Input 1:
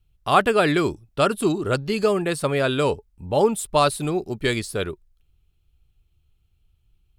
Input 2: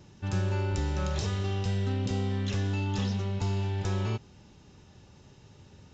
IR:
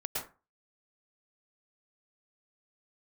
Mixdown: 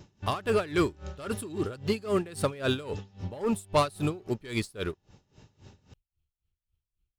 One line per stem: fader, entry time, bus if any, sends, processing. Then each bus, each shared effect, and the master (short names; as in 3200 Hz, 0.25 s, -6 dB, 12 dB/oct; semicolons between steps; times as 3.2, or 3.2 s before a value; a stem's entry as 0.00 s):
-8.0 dB, 0.00 s, no send, bell 730 Hz -3.5 dB 0.25 oct; sample leveller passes 2
+2.0 dB, 0.00 s, send -10 dB, compressor 6:1, threshold -35 dBFS, peak gain reduction 10 dB; auto duck -11 dB, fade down 1.80 s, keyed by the first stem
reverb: on, RT60 0.30 s, pre-delay 0.102 s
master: dB-linear tremolo 3.7 Hz, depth 21 dB